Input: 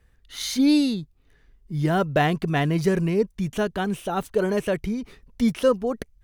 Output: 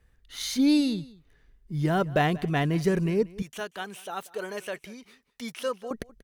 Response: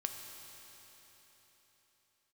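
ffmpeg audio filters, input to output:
-filter_complex "[0:a]asettb=1/sr,asplit=3[s0][s1][s2];[s0]atrim=end=3.424[s3];[s1]atrim=start=3.42:end=5.91,asetpts=PTS-STARTPTS,afade=t=in:d=0.004:c=qsin,afade=t=out:st=2.486:d=0.004:c=qsin,highpass=f=1200:p=1[s4];[s2]atrim=start=5.906[s5];[s3][s4]acrossfade=d=0.004:c1=hsin:c2=qsin[s6];[s6][s5]acrossfade=d=0.004:c1=qsin:c2=hsin,aecho=1:1:186:0.0891,volume=0.708"

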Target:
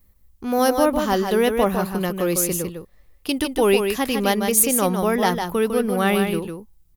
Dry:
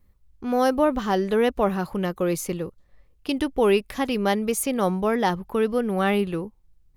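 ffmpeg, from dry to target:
-af "aemphasis=mode=production:type=50kf,asoftclip=type=hard:threshold=0.316,aecho=1:1:153:0.501,volume=1.19"

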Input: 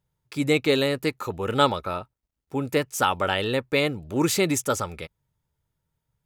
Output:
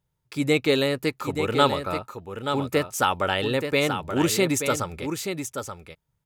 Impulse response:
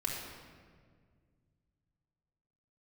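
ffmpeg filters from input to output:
-af "aecho=1:1:879:0.422"

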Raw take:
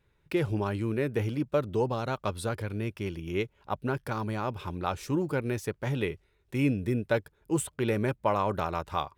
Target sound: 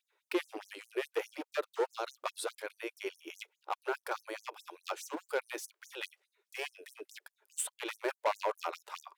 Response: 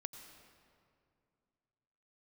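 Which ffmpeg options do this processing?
-af "volume=15.8,asoftclip=hard,volume=0.0631,afftfilt=real='re*gte(b*sr/1024,300*pow(6000/300,0.5+0.5*sin(2*PI*4.8*pts/sr)))':imag='im*gte(b*sr/1024,300*pow(6000/300,0.5+0.5*sin(2*PI*4.8*pts/sr)))':win_size=1024:overlap=0.75"

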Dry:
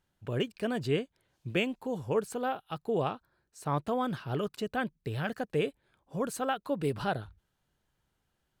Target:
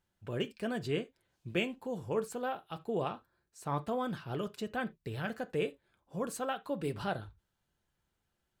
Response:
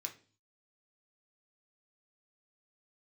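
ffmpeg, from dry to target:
-filter_complex "[0:a]asplit=2[s0][s1];[1:a]atrim=start_sample=2205,atrim=end_sample=3969,adelay=6[s2];[s1][s2]afir=irnorm=-1:irlink=0,volume=0.562[s3];[s0][s3]amix=inputs=2:normalize=0,volume=0.631"

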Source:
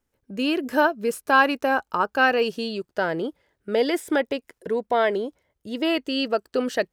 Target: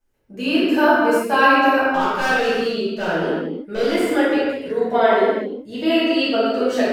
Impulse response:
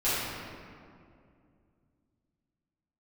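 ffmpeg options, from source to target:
-filter_complex "[0:a]asettb=1/sr,asplit=3[s0][s1][s2];[s0]atrim=end=1.934[s3];[s1]atrim=start=1.93:end=3.93,asetpts=PTS-STARTPTS,afade=t=in:d=0.004:c=qsin,afade=t=out:st=1.996:d=0.004:c=qsin,volume=11.2,asoftclip=hard,volume=0.0891[s4];[s2]atrim=start=3.926[s5];[s3][s4]acrossfade=d=0.004:c1=hsin:c2=qsin[s6];[s6][s5]acrossfade=d=0.004:c1=qsin:c2=hsin[s7];[1:a]atrim=start_sample=2205,afade=t=out:st=0.42:d=0.01,atrim=end_sample=18963[s8];[s7][s8]afir=irnorm=-1:irlink=0,volume=0.501"

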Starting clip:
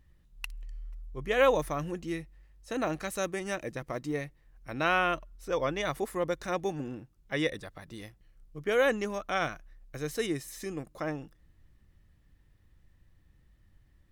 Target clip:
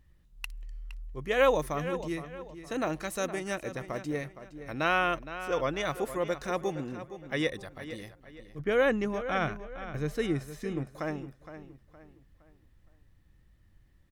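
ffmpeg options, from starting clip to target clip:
-filter_complex "[0:a]asettb=1/sr,asplit=3[s0][s1][s2];[s0]atrim=end=8.594[s3];[s1]atrim=start=8.59:end=10.87,asetpts=PTS-STARTPTS,afade=t=in:d=0.004:c=qsin,afade=t=out:st=2.276:d=0.004:c=qsin,bass=f=250:g=7,treble=f=4000:g=-9[s4];[s2]atrim=start=10.866[s5];[s3][s4]acrossfade=d=0.004:c1=hsin:c2=qsin[s6];[s6][s5]acrossfade=d=0.004:c1=qsin:c2=hsin,asplit=2[s7][s8];[s8]adelay=465,lowpass=f=4700:p=1,volume=0.251,asplit=2[s9][s10];[s10]adelay=465,lowpass=f=4700:p=1,volume=0.37,asplit=2[s11][s12];[s12]adelay=465,lowpass=f=4700:p=1,volume=0.37,asplit=2[s13][s14];[s14]adelay=465,lowpass=f=4700:p=1,volume=0.37[s15];[s7][s9][s11][s13][s15]amix=inputs=5:normalize=0"

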